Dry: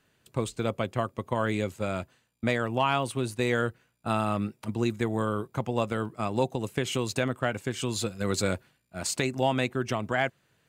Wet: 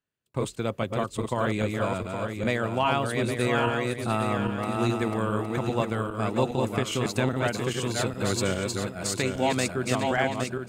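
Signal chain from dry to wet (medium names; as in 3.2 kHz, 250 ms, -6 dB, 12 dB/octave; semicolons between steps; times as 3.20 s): backward echo that repeats 407 ms, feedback 61%, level -3 dB; gate with hold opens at -36 dBFS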